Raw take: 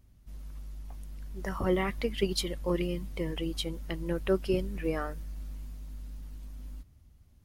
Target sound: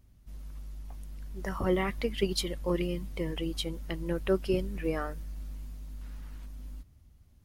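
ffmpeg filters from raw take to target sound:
-filter_complex "[0:a]asettb=1/sr,asplit=3[s0][s1][s2];[s0]atrim=end=6.014[s3];[s1]atrim=start=6.01:end=6.46,asetpts=PTS-STARTPTS,afade=t=in:d=0.004:c=qsin,afade=t=out:st=0.446:d=0.004:c=qsin,equalizer=f=1500:t=o:w=1.9:g=9.5[s4];[s2]atrim=start=6.456[s5];[s3][s4]acrossfade=d=0.004:c1=hsin:c2=qsin[s6];[s6][s5]acrossfade=d=0.004:c1=qsin:c2=hsin"

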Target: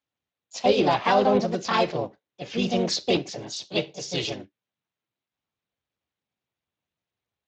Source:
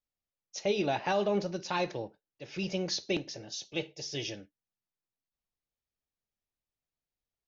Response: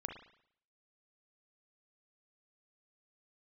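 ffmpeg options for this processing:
-filter_complex "[0:a]asplit=2[s0][s1];[s1]asetrate=55563,aresample=44100,atempo=0.793701,volume=0.891[s2];[s0][s2]amix=inputs=2:normalize=0,acontrast=73" -ar 16000 -c:a libspeex -b:a 21k

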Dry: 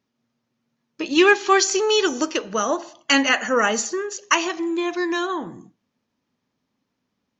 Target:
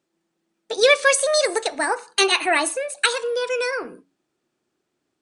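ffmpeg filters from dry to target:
-af "bandreject=f=65.05:t=h:w=4,bandreject=f=130.1:t=h:w=4,bandreject=f=195.15:t=h:w=4,asetrate=62622,aresample=44100"

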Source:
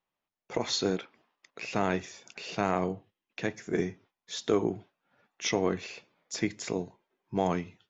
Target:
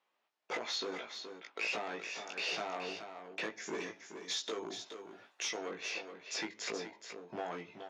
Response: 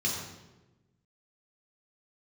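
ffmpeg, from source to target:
-filter_complex "[0:a]asettb=1/sr,asplit=3[s0][s1][s2];[s0]atrim=end=3.604[s3];[s1]atrim=start=3.6:end=5.69,asetpts=PTS-STARTPTS,afade=t=in:d=0.004:c=qsin,afade=t=out:st=2.086:d=0.004:c=qsin,aemphasis=mode=production:type=75fm[s4];[s2]atrim=start=5.686[s5];[s3][s4]acrossfade=d=0.004:c1=hsin:c2=qsin[s6];[s6][s5]acrossfade=d=0.004:c1=qsin:c2=hsin,acompressor=threshold=0.0141:ratio=16,asoftclip=type=hard:threshold=0.0133,highpass=390,lowpass=4900,asplit=2[s7][s8];[s8]adelay=18,volume=0.708[s9];[s7][s9]amix=inputs=2:normalize=0,aecho=1:1:424:0.376,volume=2"

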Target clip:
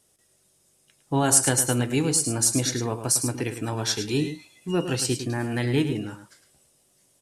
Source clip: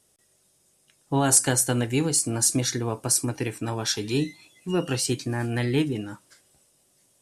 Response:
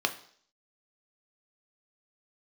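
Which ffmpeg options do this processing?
-af "aecho=1:1:106:0.335"

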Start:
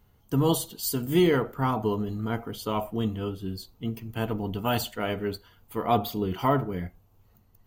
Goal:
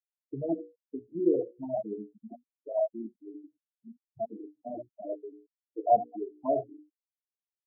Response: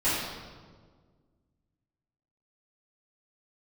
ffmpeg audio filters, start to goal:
-filter_complex "[0:a]equalizer=f=160:t=o:w=0.33:g=-4,equalizer=f=315:t=o:w=0.33:g=8,equalizer=f=630:t=o:w=0.33:g=12,equalizer=f=1250:t=o:w=0.33:g=-11,asplit=2[s0][s1];[1:a]atrim=start_sample=2205,asetrate=66150,aresample=44100[s2];[s1][s2]afir=irnorm=-1:irlink=0,volume=0.106[s3];[s0][s3]amix=inputs=2:normalize=0,afftfilt=real='re*gte(hypot(re,im),0.355)':imag='im*gte(hypot(re,im),0.355)':win_size=1024:overlap=0.75,bass=f=250:g=-9,treble=f=4000:g=-3,bandreject=f=60:t=h:w=6,bandreject=f=120:t=h:w=6,bandreject=f=180:t=h:w=6,bandreject=f=240:t=h:w=6,bandreject=f=300:t=h:w=6,bandreject=f=360:t=h:w=6,bandreject=f=420:t=h:w=6,bandreject=f=480:t=h:w=6,bandreject=f=540:t=h:w=6,afftfilt=real='re*gte(hypot(re,im),0.0112)':imag='im*gte(hypot(re,im),0.0112)':win_size=1024:overlap=0.75,asplit=2[s4][s5];[s5]afreqshift=2.9[s6];[s4][s6]amix=inputs=2:normalize=1,volume=0.668"

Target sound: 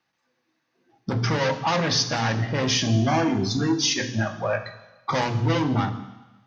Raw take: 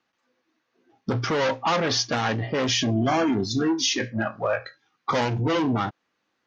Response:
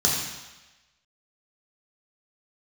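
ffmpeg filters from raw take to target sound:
-filter_complex "[0:a]asplit=2[s0][s1];[1:a]atrim=start_sample=2205,lowshelf=f=160:g=9[s2];[s1][s2]afir=irnorm=-1:irlink=0,volume=0.0794[s3];[s0][s3]amix=inputs=2:normalize=0"

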